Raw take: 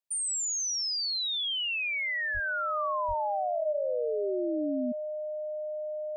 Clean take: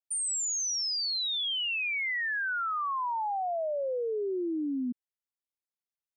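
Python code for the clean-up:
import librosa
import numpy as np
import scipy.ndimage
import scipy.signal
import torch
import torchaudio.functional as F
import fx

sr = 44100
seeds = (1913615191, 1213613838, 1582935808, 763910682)

y = fx.notch(x, sr, hz=610.0, q=30.0)
y = fx.fix_deplosive(y, sr, at_s=(2.33, 3.07))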